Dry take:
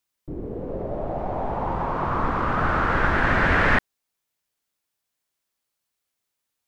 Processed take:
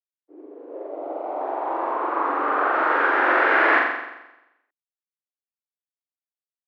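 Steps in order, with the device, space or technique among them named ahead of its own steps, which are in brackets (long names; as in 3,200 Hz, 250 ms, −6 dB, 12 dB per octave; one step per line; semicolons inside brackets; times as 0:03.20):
hearing-loss simulation (low-pass filter 2,800 Hz 12 dB per octave; downward expander −23 dBFS)
Butterworth high-pass 290 Hz 72 dB per octave
0:00.87–0:01.41: notch filter 1,700 Hz, Q 5.3
0:01.93–0:02.75: high-shelf EQ 5,800 Hz −10.5 dB
flutter between parallel walls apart 7.5 metres, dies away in 0.95 s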